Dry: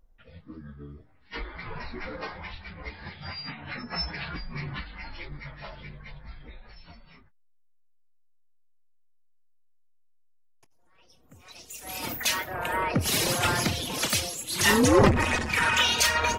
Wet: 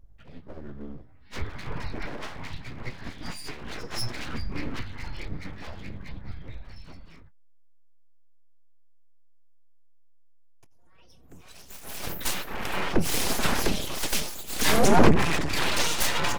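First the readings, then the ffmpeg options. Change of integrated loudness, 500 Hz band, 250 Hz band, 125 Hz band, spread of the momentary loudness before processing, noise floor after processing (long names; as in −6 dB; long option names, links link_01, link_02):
−2.0 dB, −0.5 dB, +0.5 dB, −0.5 dB, 21 LU, −50 dBFS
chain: -af "lowshelf=frequency=260:gain=9.5,aeval=exprs='abs(val(0))':channel_layout=same"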